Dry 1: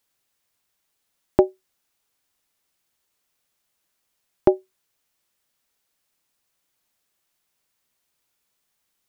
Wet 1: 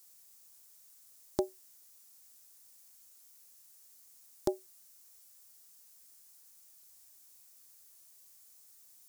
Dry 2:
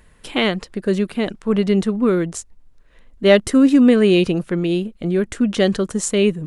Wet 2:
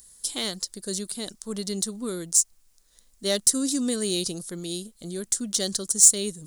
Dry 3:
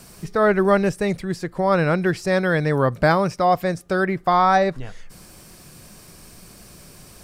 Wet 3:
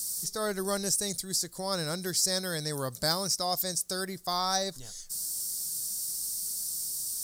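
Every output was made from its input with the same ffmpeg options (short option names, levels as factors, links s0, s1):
-af "aexciter=amount=10.3:drive=10:freq=4100,acrusher=bits=8:mix=0:aa=0.000001,volume=0.178"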